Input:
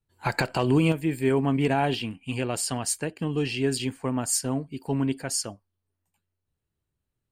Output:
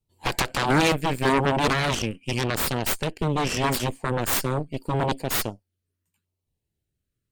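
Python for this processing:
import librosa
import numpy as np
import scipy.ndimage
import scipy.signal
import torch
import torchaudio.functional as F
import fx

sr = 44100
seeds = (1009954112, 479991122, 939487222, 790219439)

y = fx.filter_lfo_notch(x, sr, shape='saw_down', hz=0.8, low_hz=670.0, high_hz=1700.0, q=1.0)
y = fx.cheby_harmonics(y, sr, harmonics=(3, 7, 8), levels_db=(-11, -16, -10), full_scale_db=-12.0)
y = y * 10.0 ** (2.0 / 20.0)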